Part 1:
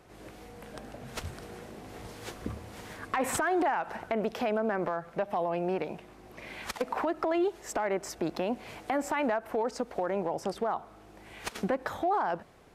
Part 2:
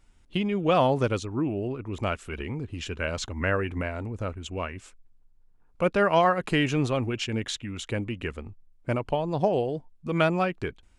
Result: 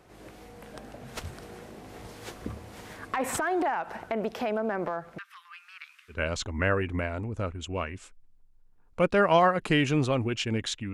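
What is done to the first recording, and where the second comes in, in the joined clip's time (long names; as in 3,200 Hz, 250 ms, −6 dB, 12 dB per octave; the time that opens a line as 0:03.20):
part 1
0:05.18–0:06.20: Butterworth high-pass 1,200 Hz 72 dB per octave
0:06.14: continue with part 2 from 0:02.96, crossfade 0.12 s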